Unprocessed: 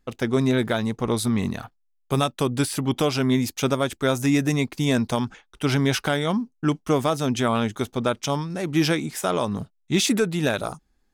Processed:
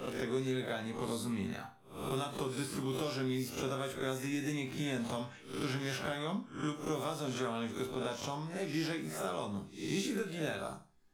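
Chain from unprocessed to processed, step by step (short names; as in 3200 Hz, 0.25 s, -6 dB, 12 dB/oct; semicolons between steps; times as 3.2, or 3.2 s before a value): spectral swells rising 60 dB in 0.46 s; resonator bank C2 minor, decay 0.32 s; three-band squash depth 70%; gain -4.5 dB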